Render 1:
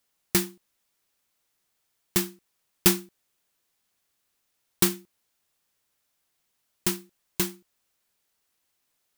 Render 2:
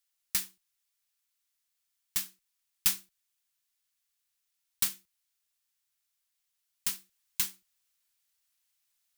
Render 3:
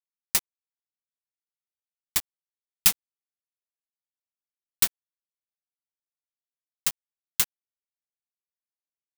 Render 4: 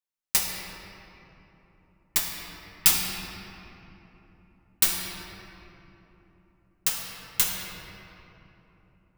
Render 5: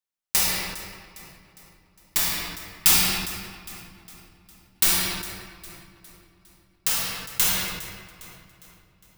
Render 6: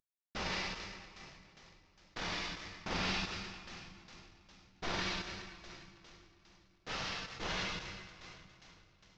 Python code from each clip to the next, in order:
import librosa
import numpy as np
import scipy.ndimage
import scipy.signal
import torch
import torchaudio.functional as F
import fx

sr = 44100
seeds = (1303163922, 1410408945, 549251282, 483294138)

y1 = fx.tone_stack(x, sr, knobs='10-0-10')
y1 = fx.rider(y1, sr, range_db=4, speed_s=0.5)
y1 = y1 * librosa.db_to_amplitude(-4.5)
y2 = np.where(np.abs(y1) >= 10.0 ** (-25.0 / 20.0), y1, 0.0)
y2 = y2 * librosa.db_to_amplitude(7.5)
y3 = fx.room_shoebox(y2, sr, seeds[0], volume_m3=200.0, walls='hard', distance_m=0.56)
y4 = fx.echo_feedback(y3, sr, ms=407, feedback_pct=48, wet_db=-17)
y4 = fx.sustainer(y4, sr, db_per_s=45.0)
y5 = fx.cvsd(y4, sr, bps=32000)
y5 = fx.hum_notches(y5, sr, base_hz=60, count=3)
y5 = y5 * librosa.db_to_amplitude(-6.0)